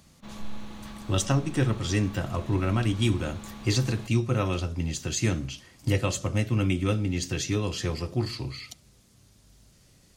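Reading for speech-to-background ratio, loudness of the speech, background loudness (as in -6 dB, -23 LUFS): 15.5 dB, -28.0 LUFS, -43.5 LUFS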